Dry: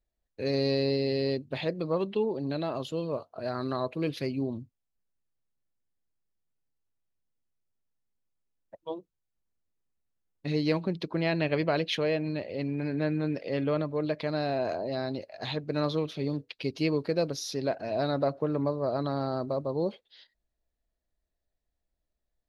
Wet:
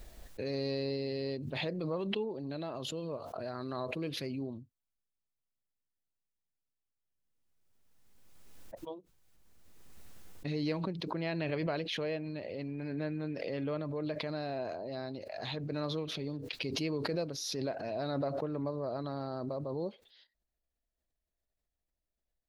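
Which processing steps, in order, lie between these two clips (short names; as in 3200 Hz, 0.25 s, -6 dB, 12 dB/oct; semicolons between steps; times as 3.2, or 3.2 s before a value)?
backwards sustainer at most 24 dB/s; gain -8 dB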